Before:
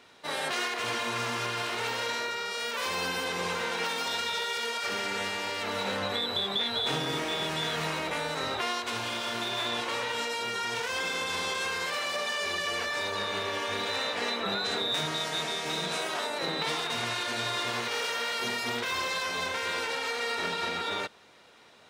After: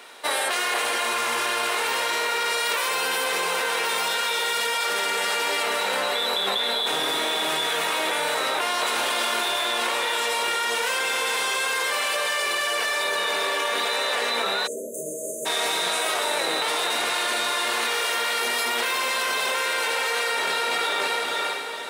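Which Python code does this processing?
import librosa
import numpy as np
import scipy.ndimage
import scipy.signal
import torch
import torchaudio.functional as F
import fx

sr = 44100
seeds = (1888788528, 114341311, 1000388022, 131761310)

p1 = scipy.signal.sosfilt(scipy.signal.butter(2, 430.0, 'highpass', fs=sr, output='sos'), x)
p2 = fx.high_shelf_res(p1, sr, hz=7600.0, db=6.5, q=1.5)
p3 = fx.echo_diffused(p2, sr, ms=482, feedback_pct=44, wet_db=-6)
p4 = fx.over_compress(p3, sr, threshold_db=-35.0, ratio=-0.5)
p5 = p3 + (p4 * 10.0 ** (1.0 / 20.0))
p6 = fx.spec_erase(p5, sr, start_s=14.67, length_s=0.79, low_hz=650.0, high_hz=6100.0)
y = p6 * 10.0 ** (2.5 / 20.0)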